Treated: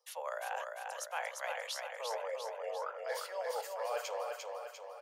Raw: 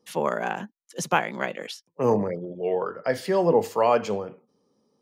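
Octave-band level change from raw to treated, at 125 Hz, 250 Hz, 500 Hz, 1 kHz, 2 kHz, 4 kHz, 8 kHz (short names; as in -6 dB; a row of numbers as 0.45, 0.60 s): under -40 dB, under -40 dB, -15.0 dB, -12.5 dB, -10.0 dB, -5.5 dB, -6.0 dB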